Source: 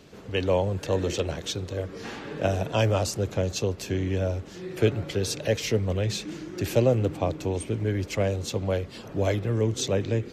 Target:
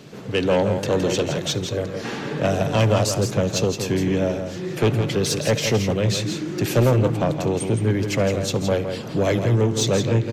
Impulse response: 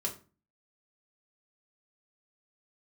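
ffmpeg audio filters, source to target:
-filter_complex "[0:a]lowshelf=frequency=100:width_type=q:width=3:gain=-7.5,asoftclip=type=tanh:threshold=-19.5dB,aecho=1:1:166:0.422,asplit=2[link_01][link_02];[1:a]atrim=start_sample=2205,adelay=66[link_03];[link_02][link_03]afir=irnorm=-1:irlink=0,volume=-23.5dB[link_04];[link_01][link_04]amix=inputs=2:normalize=0,volume=7dB"

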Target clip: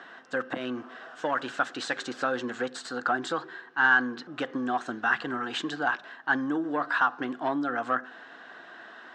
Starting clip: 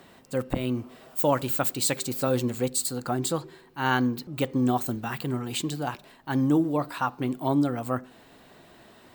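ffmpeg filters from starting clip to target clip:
ffmpeg -i in.wav -filter_complex "[0:a]acompressor=threshold=-24dB:ratio=6,asplit=2[link_01][link_02];[link_02]highpass=frequency=720:poles=1,volume=12dB,asoftclip=type=tanh:threshold=-15.5dB[link_03];[link_01][link_03]amix=inputs=2:normalize=0,lowpass=frequency=1400:poles=1,volume=-6dB,highpass=360,equalizer=frequency=400:width_type=q:width=4:gain=-7,equalizer=frequency=570:width_type=q:width=4:gain=-9,equalizer=frequency=910:width_type=q:width=4:gain=-6,equalizer=frequency=1600:width_type=q:width=4:gain=10,equalizer=frequency=2300:width_type=q:width=4:gain=-9,equalizer=frequency=4500:width_type=q:width=4:gain=-6,lowpass=frequency=6000:width=0.5412,lowpass=frequency=6000:width=1.3066,volume=5.5dB" out.wav

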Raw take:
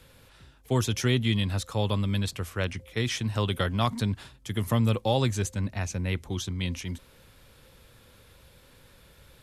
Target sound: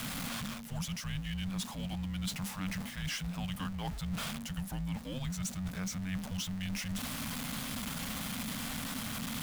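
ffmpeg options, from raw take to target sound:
ffmpeg -i in.wav -af "aeval=exprs='val(0)+0.5*0.0355*sgn(val(0))':channel_layout=same,areverse,acompressor=threshold=-31dB:ratio=6,areverse,afreqshift=-280,equalizer=frequency=370:width=4.8:gain=-14,volume=-3.5dB" out.wav

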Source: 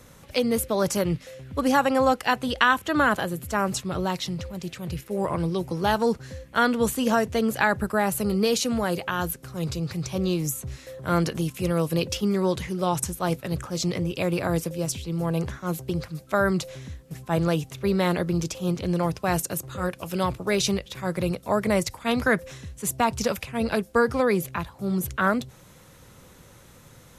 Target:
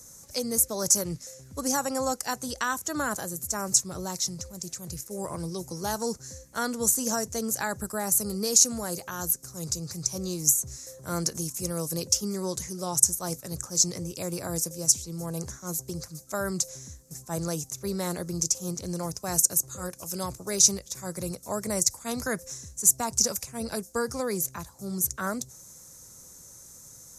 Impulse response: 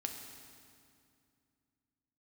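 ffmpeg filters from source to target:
-af "highshelf=frequency=4400:width_type=q:width=3:gain=13.5,volume=-8dB"

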